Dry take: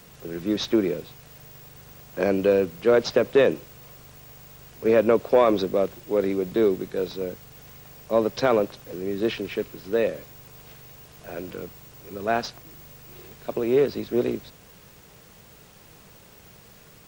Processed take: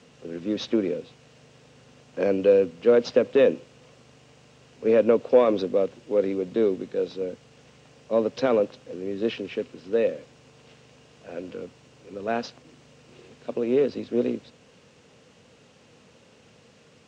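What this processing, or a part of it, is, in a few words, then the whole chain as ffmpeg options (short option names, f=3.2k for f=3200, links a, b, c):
car door speaker: -af "highpass=100,equalizer=f=100:t=q:w=4:g=3,equalizer=f=250:t=q:w=4:g=9,equalizer=f=500:t=q:w=4:g=8,equalizer=f=2.8k:t=q:w=4:g=5,lowpass=f=7.4k:w=0.5412,lowpass=f=7.4k:w=1.3066,volume=-5.5dB"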